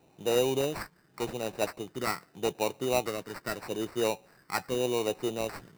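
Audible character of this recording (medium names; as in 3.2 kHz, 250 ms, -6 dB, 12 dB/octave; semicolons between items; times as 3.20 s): phasing stages 12, 0.82 Hz, lowest notch 670–2700 Hz; aliases and images of a low sample rate 3.3 kHz, jitter 0%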